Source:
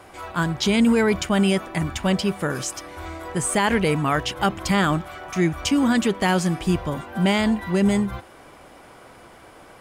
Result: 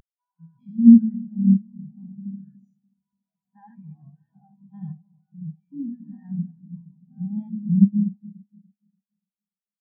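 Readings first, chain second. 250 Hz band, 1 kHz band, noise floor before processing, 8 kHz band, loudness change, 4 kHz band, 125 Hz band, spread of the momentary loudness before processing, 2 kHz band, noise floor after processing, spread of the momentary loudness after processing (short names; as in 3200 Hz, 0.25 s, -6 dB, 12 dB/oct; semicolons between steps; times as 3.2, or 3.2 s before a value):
+1.5 dB, under -30 dB, -47 dBFS, under -40 dB, +3.0 dB, under -40 dB, -3.0 dB, 10 LU, under -40 dB, under -85 dBFS, 25 LU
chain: stepped spectrum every 0.2 s; in parallel at +1 dB: compressor, threshold -35 dBFS, peak gain reduction 18 dB; on the sum: echo 77 ms -7 dB; upward compressor, threshold -31 dBFS; tilt +2.5 dB/oct; comb 1.2 ms, depth 61%; on a send: darkening echo 0.29 s, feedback 78%, low-pass 1300 Hz, level -6 dB; on the sum: dynamic EQ 170 Hz, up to +6 dB, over -32 dBFS, Q 0.96; downsampling 16000 Hz; spectral expander 4:1; gain +4.5 dB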